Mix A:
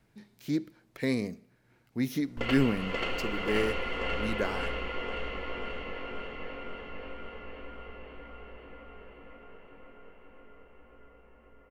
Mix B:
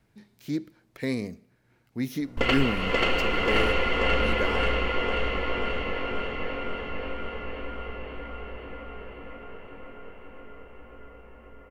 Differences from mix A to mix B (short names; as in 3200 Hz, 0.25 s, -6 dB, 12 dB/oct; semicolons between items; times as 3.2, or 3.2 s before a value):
background +8.5 dB; master: add bell 81 Hz +7.5 dB 0.44 oct